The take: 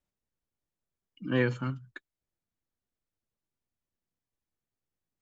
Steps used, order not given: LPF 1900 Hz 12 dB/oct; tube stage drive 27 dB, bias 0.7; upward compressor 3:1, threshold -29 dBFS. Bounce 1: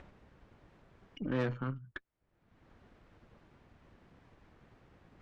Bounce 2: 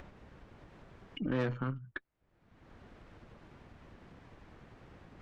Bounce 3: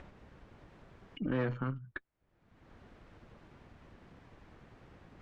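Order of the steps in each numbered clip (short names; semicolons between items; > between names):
upward compressor > LPF > tube stage; LPF > tube stage > upward compressor; tube stage > upward compressor > LPF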